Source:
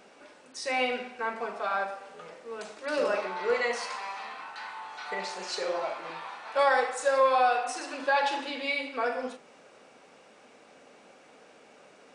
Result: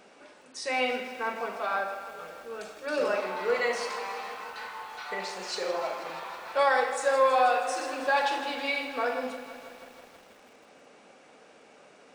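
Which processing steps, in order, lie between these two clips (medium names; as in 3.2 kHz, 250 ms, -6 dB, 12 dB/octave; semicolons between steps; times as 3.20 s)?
1.80–3.01 s: comb of notches 1 kHz; spring tank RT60 1.5 s, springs 33/43 ms, chirp 75 ms, DRR 15 dB; bit-crushed delay 161 ms, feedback 80%, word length 8-bit, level -13.5 dB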